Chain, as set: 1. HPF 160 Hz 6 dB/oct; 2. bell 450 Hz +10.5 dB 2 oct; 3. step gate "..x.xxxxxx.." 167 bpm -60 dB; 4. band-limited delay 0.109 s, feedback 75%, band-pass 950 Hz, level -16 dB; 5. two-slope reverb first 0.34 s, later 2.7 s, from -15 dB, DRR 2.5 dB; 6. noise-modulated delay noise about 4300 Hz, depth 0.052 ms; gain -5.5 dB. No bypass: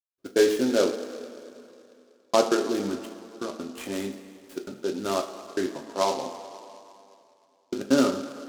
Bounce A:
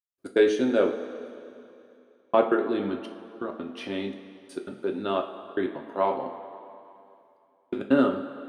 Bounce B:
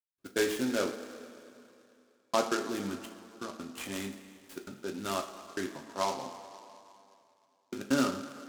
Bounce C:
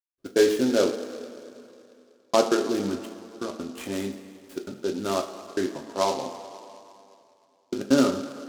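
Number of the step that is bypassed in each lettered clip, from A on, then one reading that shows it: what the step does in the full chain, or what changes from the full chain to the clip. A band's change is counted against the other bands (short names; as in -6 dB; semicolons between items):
6, 4 kHz band -6.5 dB; 2, 500 Hz band -5.0 dB; 1, 125 Hz band +3.0 dB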